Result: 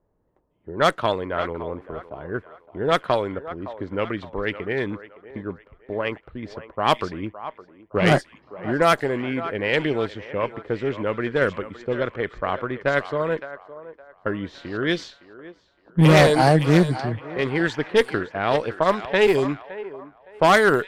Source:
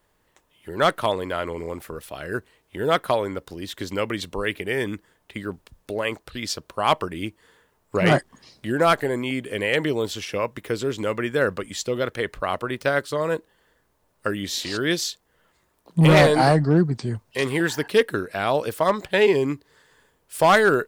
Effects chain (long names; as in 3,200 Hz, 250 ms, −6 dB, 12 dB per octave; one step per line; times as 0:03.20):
feedback echo with a high-pass in the loop 564 ms, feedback 59%, high-pass 840 Hz, level −9 dB
harmonic generator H 2 −11 dB, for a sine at −5 dBFS
low-pass that shuts in the quiet parts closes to 610 Hz, open at −13 dBFS